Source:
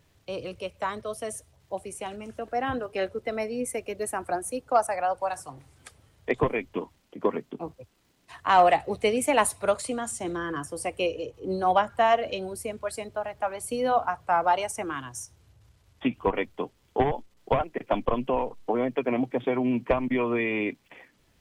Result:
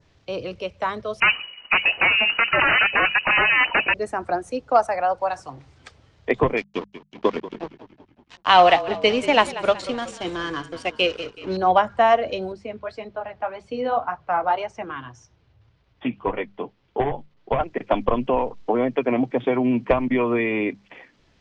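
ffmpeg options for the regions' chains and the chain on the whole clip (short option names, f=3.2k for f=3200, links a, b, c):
-filter_complex "[0:a]asettb=1/sr,asplit=3[a][b][c];[a]atrim=end=1.204[d];[b]atrim=start=1.2:end=3.94,asetpts=PTS-STARTPTS,afade=t=in:d=0.004:c=qsin,afade=t=out:st=2.736:d=0.004:c=qsin,agate=range=-33dB:threshold=-57dB:ratio=3:release=100:detection=peak,aeval=exprs='0.15*sin(PI/2*6.31*val(0)/0.15)':c=same,lowpass=f=2.6k:t=q:w=0.5098,lowpass=f=2.6k:t=q:w=0.6013,lowpass=f=2.6k:t=q:w=0.9,lowpass=f=2.6k:t=q:w=2.563,afreqshift=-3000[e];[c]atrim=start=3.936[f];[d][e]acrossfade=d=0.004:c1=hsin:c2=qsin[g];[g][f]acrossfade=d=0.004:c1=qsin:c2=hsin,asettb=1/sr,asplit=3[h][i][j];[h]atrim=end=6.574[k];[i]atrim=start=6.57:end=11.57,asetpts=PTS-STARTPTS,afade=t=in:d=0.004:c=qsin,afade=t=out:st=4.996:d=0.004:c=qsin,equalizer=f=3.3k:w=1.5:g=12,aeval=exprs='sgn(val(0))*max(abs(val(0))-0.0112,0)':c=same,asplit=6[l][m][n][o][p][q];[m]adelay=187,afreqshift=-33,volume=-15dB[r];[n]adelay=374,afreqshift=-66,volume=-20.8dB[s];[o]adelay=561,afreqshift=-99,volume=-26.7dB[t];[p]adelay=748,afreqshift=-132,volume=-32.5dB[u];[q]adelay=935,afreqshift=-165,volume=-38.4dB[v];[l][r][s][t][u][v]amix=inputs=6:normalize=0,atrim=end_sample=220500[w];[j]atrim=start=11.566[x];[k][w]acrossfade=d=0.004:c1=hsin:c2=qsin[y];[y][x]acrossfade=d=0.004:c1=qsin:c2=hsin,asettb=1/sr,asplit=3[z][aa][ab];[z]atrim=end=12.524[ac];[aa]atrim=start=12.52:end=17.59,asetpts=PTS-STARTPTS,afade=t=in:d=0.004:c=qsin,afade=t=out:st=5.066:d=0.004:c=qsin,lowpass=3.9k,flanger=delay=4.7:depth=5.4:regen=-45:speed=1.8:shape=triangular[ad];[ab]atrim=start=17.586[ae];[ac][ad]acrossfade=d=0.004:c1=hsin:c2=qsin[af];[af][ae]acrossfade=d=0.004:c1=qsin:c2=hsin,lowpass=f=5.9k:w=0.5412,lowpass=f=5.9k:w=1.3066,bandreject=f=50:t=h:w=6,bandreject=f=100:t=h:w=6,bandreject=f=150:t=h:w=6,bandreject=f=200:t=h:w=6,adynamicequalizer=threshold=0.00631:dfrequency=3000:dqfactor=1.5:tfrequency=3000:tqfactor=1.5:attack=5:release=100:ratio=0.375:range=2.5:mode=cutabove:tftype=bell,volume=5dB"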